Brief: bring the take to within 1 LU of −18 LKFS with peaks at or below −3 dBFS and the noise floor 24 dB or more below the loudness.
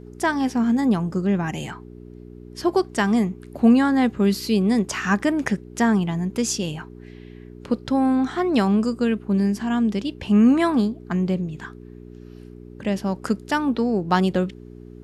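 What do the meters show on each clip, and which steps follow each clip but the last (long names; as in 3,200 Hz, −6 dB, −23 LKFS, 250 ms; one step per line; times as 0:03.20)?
mains hum 60 Hz; hum harmonics up to 420 Hz; level of the hum −39 dBFS; integrated loudness −21.5 LKFS; sample peak −5.5 dBFS; target loudness −18.0 LKFS
→ hum removal 60 Hz, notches 7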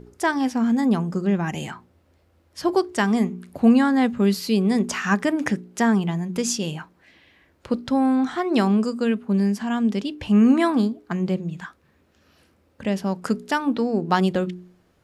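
mains hum none found; integrated loudness −22.0 LKFS; sample peak −5.5 dBFS; target loudness −18.0 LKFS
→ level +4 dB
brickwall limiter −3 dBFS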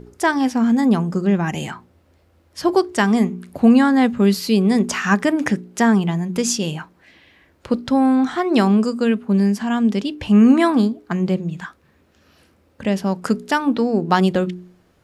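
integrated loudness −18.0 LKFS; sample peak −3.0 dBFS; background noise floor −58 dBFS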